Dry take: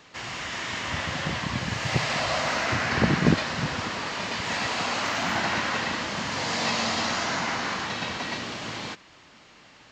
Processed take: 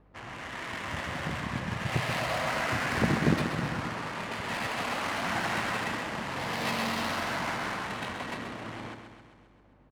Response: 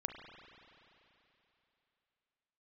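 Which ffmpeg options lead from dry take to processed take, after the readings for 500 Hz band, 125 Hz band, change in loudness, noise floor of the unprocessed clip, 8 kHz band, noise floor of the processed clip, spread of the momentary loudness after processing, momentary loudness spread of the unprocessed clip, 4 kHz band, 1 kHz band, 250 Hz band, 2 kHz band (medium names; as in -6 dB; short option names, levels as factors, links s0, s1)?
-3.5 dB, -3.5 dB, -4.5 dB, -53 dBFS, -8.0 dB, -59 dBFS, 11 LU, 9 LU, -8.0 dB, -3.5 dB, -3.5 dB, -4.5 dB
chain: -af "aeval=exprs='val(0)+0.00158*(sin(2*PI*50*n/s)+sin(2*PI*2*50*n/s)/2+sin(2*PI*3*50*n/s)/3+sin(2*PI*4*50*n/s)/4+sin(2*PI*5*50*n/s)/5)':c=same,adynamicsmooth=sensitivity=4.5:basefreq=620,aecho=1:1:132|264|396|528|660|792|924|1056:0.398|0.239|0.143|0.086|0.0516|0.031|0.0186|0.0111,volume=0.596"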